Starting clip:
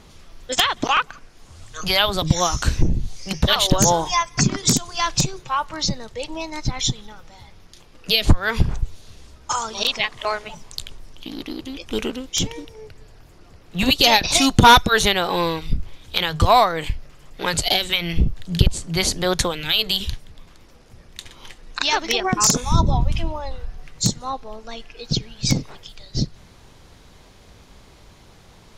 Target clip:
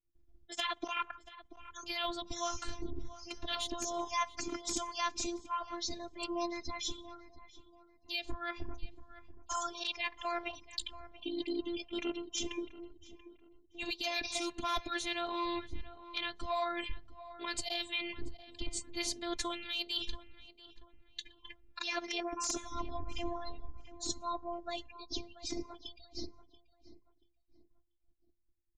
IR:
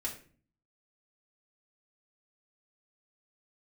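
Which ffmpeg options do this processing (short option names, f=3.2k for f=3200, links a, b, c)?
-filter_complex "[0:a]lowpass=10k,afftdn=nr=35:nf=-38,agate=range=-33dB:threshold=-37dB:ratio=3:detection=peak,highpass=51,adynamicequalizer=threshold=0.0112:dfrequency=2400:dqfactor=7.9:tfrequency=2400:tqfactor=7.9:attack=5:release=100:ratio=0.375:range=2.5:mode=boostabove:tftype=bell,areverse,acompressor=threshold=-29dB:ratio=16,areverse,afftfilt=real='hypot(re,im)*cos(PI*b)':imag='0':win_size=512:overlap=0.75,asplit=2[a][b];[b]adelay=684,lowpass=f=2k:p=1,volume=-15dB,asplit=2[c][d];[d]adelay=684,lowpass=f=2k:p=1,volume=0.34,asplit=2[e][f];[f]adelay=684,lowpass=f=2k:p=1,volume=0.34[g];[a][c][e][g]amix=inputs=4:normalize=0"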